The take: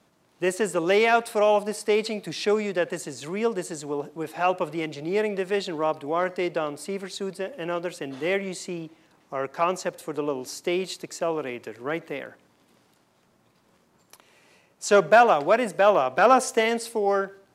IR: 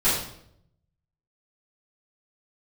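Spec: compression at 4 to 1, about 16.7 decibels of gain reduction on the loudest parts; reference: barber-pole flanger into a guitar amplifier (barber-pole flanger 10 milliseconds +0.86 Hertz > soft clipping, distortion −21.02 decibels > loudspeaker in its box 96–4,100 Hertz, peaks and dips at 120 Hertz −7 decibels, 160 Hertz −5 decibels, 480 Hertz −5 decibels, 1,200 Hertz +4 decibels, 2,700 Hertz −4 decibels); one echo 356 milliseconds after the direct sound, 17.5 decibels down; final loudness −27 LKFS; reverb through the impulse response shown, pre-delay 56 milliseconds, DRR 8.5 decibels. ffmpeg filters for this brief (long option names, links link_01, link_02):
-filter_complex "[0:a]acompressor=threshold=-33dB:ratio=4,aecho=1:1:356:0.133,asplit=2[link_01][link_02];[1:a]atrim=start_sample=2205,adelay=56[link_03];[link_02][link_03]afir=irnorm=-1:irlink=0,volume=-23.5dB[link_04];[link_01][link_04]amix=inputs=2:normalize=0,asplit=2[link_05][link_06];[link_06]adelay=10,afreqshift=0.86[link_07];[link_05][link_07]amix=inputs=2:normalize=1,asoftclip=threshold=-27.5dB,highpass=96,equalizer=frequency=120:width_type=q:width=4:gain=-7,equalizer=frequency=160:width_type=q:width=4:gain=-5,equalizer=frequency=480:width_type=q:width=4:gain=-5,equalizer=frequency=1200:width_type=q:width=4:gain=4,equalizer=frequency=2700:width_type=q:width=4:gain=-4,lowpass=frequency=4100:width=0.5412,lowpass=frequency=4100:width=1.3066,volume=14dB"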